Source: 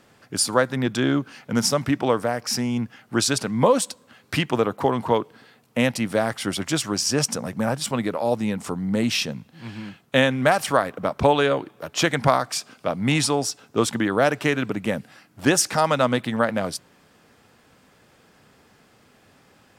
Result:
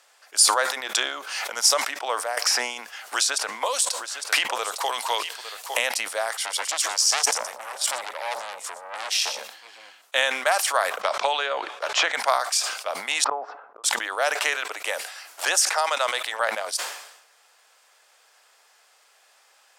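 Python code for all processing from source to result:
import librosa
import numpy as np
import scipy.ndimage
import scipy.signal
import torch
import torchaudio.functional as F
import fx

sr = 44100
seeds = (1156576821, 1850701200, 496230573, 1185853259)

y = fx.chain(x, sr, fx.highpass(hz=160.0, slope=12),
    fx.notch(hz=1600.0, q=22.0),
    fx.pre_swell(db_per_s=37.0), at=(0.65, 1.56))
y = fx.chain(y, sr, fx.hum_notches(base_hz=60, count=3),
    fx.echo_single(ms=856, db=-20.5),
    fx.band_squash(depth_pct=100), at=(2.37, 5.79))
y = fx.chain(y, sr, fx.notch(hz=2600.0, q=25.0),
    fx.echo_single(ms=121, db=-15.0),
    fx.transformer_sat(knee_hz=2600.0), at=(6.37, 10.02))
y = fx.chain(y, sr, fx.air_absorb(metres=95.0),
    fx.band_squash(depth_pct=100), at=(11.01, 12.15))
y = fx.chain(y, sr, fx.lowpass(hz=1300.0, slope=24),
    fx.gate_flip(shuts_db=-18.0, range_db=-29), at=(13.24, 13.84))
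y = fx.chain(y, sr, fx.highpass(hz=300.0, slope=24),
    fx.band_squash(depth_pct=70), at=(14.35, 16.4))
y = scipy.signal.sosfilt(scipy.signal.butter(4, 620.0, 'highpass', fs=sr, output='sos'), y)
y = fx.peak_eq(y, sr, hz=7700.0, db=8.0, octaves=2.0)
y = fx.sustainer(y, sr, db_per_s=68.0)
y = y * librosa.db_to_amplitude(-2.5)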